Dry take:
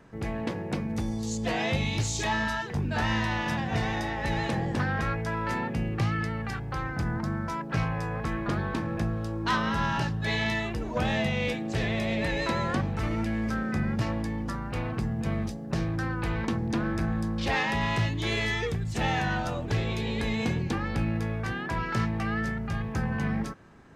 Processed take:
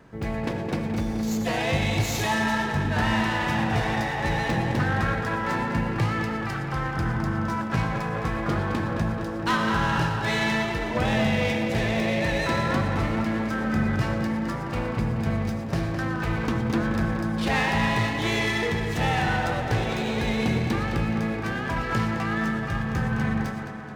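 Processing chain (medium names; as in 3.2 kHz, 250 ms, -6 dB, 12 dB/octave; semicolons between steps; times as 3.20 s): on a send: tape echo 214 ms, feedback 76%, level -6 dB, low-pass 4.2 kHz; on the sum: gated-style reverb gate 140 ms rising, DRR 8 dB; sliding maximum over 3 samples; trim +2.5 dB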